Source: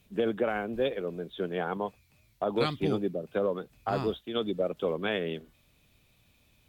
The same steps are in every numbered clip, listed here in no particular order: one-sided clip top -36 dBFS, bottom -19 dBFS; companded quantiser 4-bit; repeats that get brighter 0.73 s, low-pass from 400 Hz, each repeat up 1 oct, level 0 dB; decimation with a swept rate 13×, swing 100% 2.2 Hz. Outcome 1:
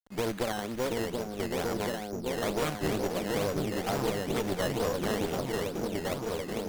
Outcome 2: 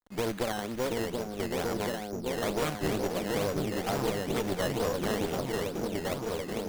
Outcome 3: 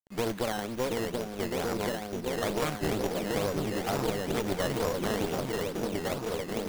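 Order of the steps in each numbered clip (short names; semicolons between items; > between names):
companded quantiser > repeats that get brighter > decimation with a swept rate > one-sided clip; companded quantiser > repeats that get brighter > one-sided clip > decimation with a swept rate; repeats that get brighter > decimation with a swept rate > one-sided clip > companded quantiser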